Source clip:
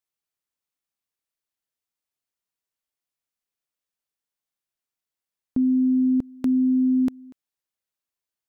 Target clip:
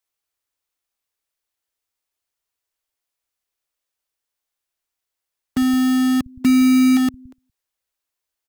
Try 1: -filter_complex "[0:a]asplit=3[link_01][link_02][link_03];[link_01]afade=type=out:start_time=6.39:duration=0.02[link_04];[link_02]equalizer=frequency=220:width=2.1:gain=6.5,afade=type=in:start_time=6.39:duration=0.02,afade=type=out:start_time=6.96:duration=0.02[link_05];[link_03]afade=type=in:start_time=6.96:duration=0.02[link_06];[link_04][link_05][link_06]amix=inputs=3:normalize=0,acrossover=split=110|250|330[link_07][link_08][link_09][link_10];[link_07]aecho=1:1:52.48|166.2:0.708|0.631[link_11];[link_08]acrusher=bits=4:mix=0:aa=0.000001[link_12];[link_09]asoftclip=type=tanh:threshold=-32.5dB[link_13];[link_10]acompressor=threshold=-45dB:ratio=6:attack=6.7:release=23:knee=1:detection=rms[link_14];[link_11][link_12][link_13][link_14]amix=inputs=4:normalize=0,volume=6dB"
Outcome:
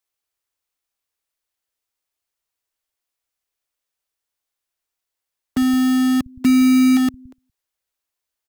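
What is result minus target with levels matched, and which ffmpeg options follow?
downward compressor: peak gain reduction −9 dB
-filter_complex "[0:a]asplit=3[link_01][link_02][link_03];[link_01]afade=type=out:start_time=6.39:duration=0.02[link_04];[link_02]equalizer=frequency=220:width=2.1:gain=6.5,afade=type=in:start_time=6.39:duration=0.02,afade=type=out:start_time=6.96:duration=0.02[link_05];[link_03]afade=type=in:start_time=6.96:duration=0.02[link_06];[link_04][link_05][link_06]amix=inputs=3:normalize=0,acrossover=split=110|250|330[link_07][link_08][link_09][link_10];[link_07]aecho=1:1:52.48|166.2:0.708|0.631[link_11];[link_08]acrusher=bits=4:mix=0:aa=0.000001[link_12];[link_09]asoftclip=type=tanh:threshold=-32.5dB[link_13];[link_10]acompressor=threshold=-56dB:ratio=6:attack=6.7:release=23:knee=1:detection=rms[link_14];[link_11][link_12][link_13][link_14]amix=inputs=4:normalize=0,volume=6dB"

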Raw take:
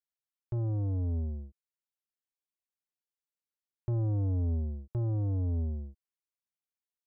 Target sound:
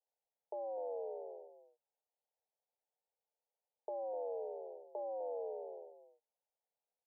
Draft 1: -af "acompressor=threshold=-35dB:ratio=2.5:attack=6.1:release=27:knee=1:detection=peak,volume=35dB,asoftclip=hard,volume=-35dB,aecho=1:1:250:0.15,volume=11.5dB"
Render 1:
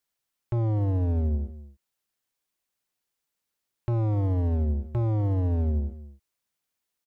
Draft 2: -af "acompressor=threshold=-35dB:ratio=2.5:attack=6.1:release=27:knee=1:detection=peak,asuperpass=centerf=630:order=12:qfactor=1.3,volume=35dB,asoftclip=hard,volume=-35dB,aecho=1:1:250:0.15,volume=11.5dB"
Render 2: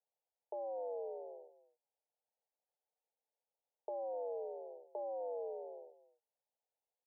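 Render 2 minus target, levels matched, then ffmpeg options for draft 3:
echo-to-direct −6 dB
-af "acompressor=threshold=-35dB:ratio=2.5:attack=6.1:release=27:knee=1:detection=peak,asuperpass=centerf=630:order=12:qfactor=1.3,volume=35dB,asoftclip=hard,volume=-35dB,aecho=1:1:250:0.299,volume=11.5dB"

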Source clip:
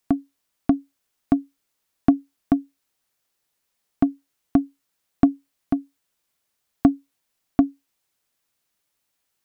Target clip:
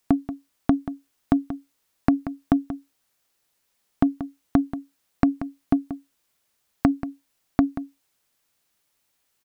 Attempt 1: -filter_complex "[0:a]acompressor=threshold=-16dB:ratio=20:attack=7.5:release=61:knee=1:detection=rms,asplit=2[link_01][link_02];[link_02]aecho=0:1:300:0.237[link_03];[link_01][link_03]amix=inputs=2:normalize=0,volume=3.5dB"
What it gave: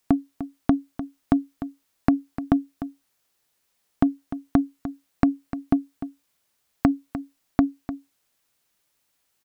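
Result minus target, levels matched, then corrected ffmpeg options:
echo 117 ms late
-filter_complex "[0:a]acompressor=threshold=-16dB:ratio=20:attack=7.5:release=61:knee=1:detection=rms,asplit=2[link_01][link_02];[link_02]aecho=0:1:183:0.237[link_03];[link_01][link_03]amix=inputs=2:normalize=0,volume=3.5dB"

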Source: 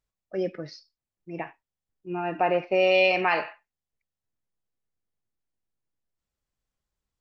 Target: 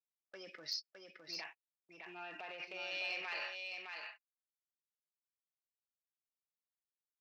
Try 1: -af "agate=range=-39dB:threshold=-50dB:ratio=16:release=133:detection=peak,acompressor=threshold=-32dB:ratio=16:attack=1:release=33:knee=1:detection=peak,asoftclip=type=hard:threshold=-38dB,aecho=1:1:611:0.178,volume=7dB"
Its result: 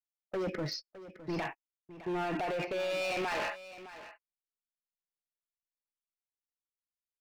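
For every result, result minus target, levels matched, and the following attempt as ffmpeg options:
echo-to-direct −10 dB; 4,000 Hz band −6.5 dB
-af "agate=range=-39dB:threshold=-50dB:ratio=16:release=133:detection=peak,acompressor=threshold=-32dB:ratio=16:attack=1:release=33:knee=1:detection=peak,asoftclip=type=hard:threshold=-38dB,aecho=1:1:611:0.562,volume=7dB"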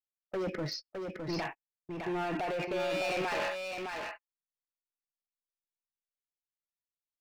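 4,000 Hz band −5.5 dB
-af "agate=range=-39dB:threshold=-50dB:ratio=16:release=133:detection=peak,acompressor=threshold=-32dB:ratio=16:attack=1:release=33:knee=1:detection=peak,bandpass=frequency=4900:width_type=q:width=1.3:csg=0,asoftclip=type=hard:threshold=-38dB,aecho=1:1:611:0.562,volume=7dB"

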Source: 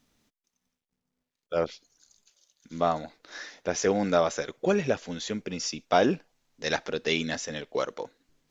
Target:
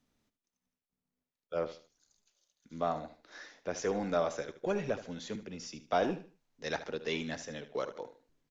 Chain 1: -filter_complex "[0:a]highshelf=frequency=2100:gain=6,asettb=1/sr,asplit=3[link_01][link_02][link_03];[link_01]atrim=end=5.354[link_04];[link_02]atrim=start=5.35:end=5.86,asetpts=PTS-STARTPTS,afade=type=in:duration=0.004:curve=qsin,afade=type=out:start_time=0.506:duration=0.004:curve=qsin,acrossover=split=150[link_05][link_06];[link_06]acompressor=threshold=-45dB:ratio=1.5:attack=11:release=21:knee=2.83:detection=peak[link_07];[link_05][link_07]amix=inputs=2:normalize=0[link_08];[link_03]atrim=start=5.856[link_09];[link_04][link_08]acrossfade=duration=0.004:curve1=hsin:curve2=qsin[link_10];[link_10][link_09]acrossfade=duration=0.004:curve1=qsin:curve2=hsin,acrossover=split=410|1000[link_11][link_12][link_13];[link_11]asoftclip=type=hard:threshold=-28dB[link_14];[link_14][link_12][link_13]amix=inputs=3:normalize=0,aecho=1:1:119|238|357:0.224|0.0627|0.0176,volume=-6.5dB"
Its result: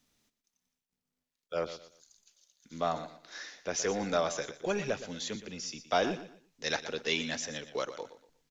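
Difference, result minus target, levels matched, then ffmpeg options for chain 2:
echo 44 ms late; 4,000 Hz band +6.0 dB
-filter_complex "[0:a]highshelf=frequency=2100:gain=-5,asettb=1/sr,asplit=3[link_01][link_02][link_03];[link_01]atrim=end=5.354[link_04];[link_02]atrim=start=5.35:end=5.86,asetpts=PTS-STARTPTS,afade=type=in:duration=0.004:curve=qsin,afade=type=out:start_time=0.506:duration=0.004:curve=qsin,acrossover=split=150[link_05][link_06];[link_06]acompressor=threshold=-45dB:ratio=1.5:attack=11:release=21:knee=2.83:detection=peak[link_07];[link_05][link_07]amix=inputs=2:normalize=0[link_08];[link_03]atrim=start=5.856[link_09];[link_04][link_08]acrossfade=duration=0.004:curve1=hsin:curve2=qsin[link_10];[link_10][link_09]acrossfade=duration=0.004:curve1=qsin:curve2=hsin,acrossover=split=410|1000[link_11][link_12][link_13];[link_11]asoftclip=type=hard:threshold=-28dB[link_14];[link_14][link_12][link_13]amix=inputs=3:normalize=0,aecho=1:1:75|150|225:0.224|0.0627|0.0176,volume=-6.5dB"

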